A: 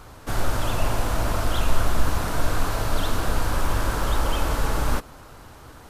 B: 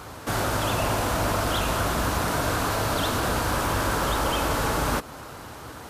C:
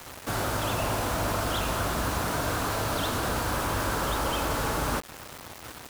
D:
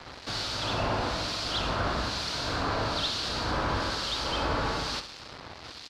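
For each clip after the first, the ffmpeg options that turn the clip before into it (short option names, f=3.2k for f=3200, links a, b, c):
-filter_complex "[0:a]highpass=53,lowshelf=f=74:g=-8.5,asplit=2[a][b];[b]alimiter=level_in=2.5dB:limit=-24dB:level=0:latency=1:release=184,volume=-2.5dB,volume=1dB[c];[a][c]amix=inputs=2:normalize=0"
-af "acrusher=bits=5:mix=0:aa=0.000001,volume=-3.5dB"
-filter_complex "[0:a]lowpass=f=4.5k:t=q:w=3.5,acrossover=split=2300[a][b];[a]aeval=exprs='val(0)*(1-0.7/2+0.7/2*cos(2*PI*1.1*n/s))':c=same[c];[b]aeval=exprs='val(0)*(1-0.7/2-0.7/2*cos(2*PI*1.1*n/s))':c=same[d];[c][d]amix=inputs=2:normalize=0,aecho=1:1:65|130|195|260|325:0.299|0.131|0.0578|0.0254|0.0112"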